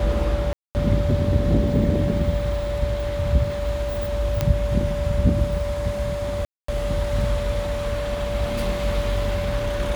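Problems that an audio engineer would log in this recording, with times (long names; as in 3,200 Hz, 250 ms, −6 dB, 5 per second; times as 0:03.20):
whistle 580 Hz −26 dBFS
0:00.53–0:00.75: drop-out 219 ms
0:04.41: click −7 dBFS
0:06.45–0:06.68: drop-out 234 ms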